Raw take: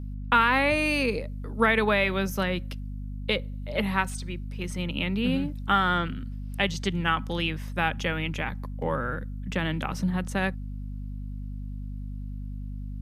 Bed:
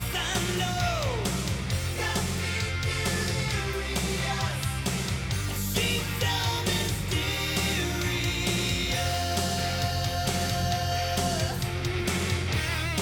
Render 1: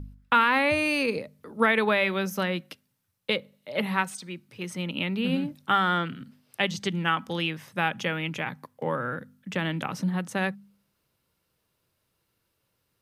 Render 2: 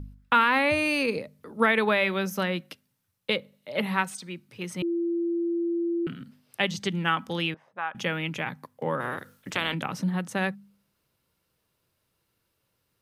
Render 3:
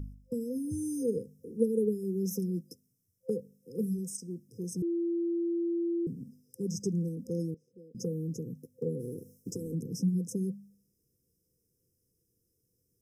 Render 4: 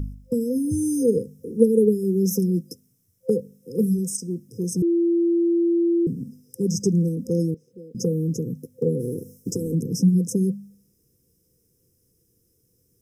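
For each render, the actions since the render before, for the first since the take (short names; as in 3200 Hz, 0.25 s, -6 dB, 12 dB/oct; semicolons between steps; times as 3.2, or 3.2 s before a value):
de-hum 50 Hz, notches 5
4.82–6.07 bleep 340 Hz -24 dBFS; 7.54–7.95 auto-wah 500–1100 Hz, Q 2.3, up, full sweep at -32.5 dBFS; 8.99–9.73 spectral limiter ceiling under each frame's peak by 21 dB
FFT band-reject 520–5000 Hz; dynamic EQ 310 Hz, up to -4 dB, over -39 dBFS, Q 1.8
gain +11 dB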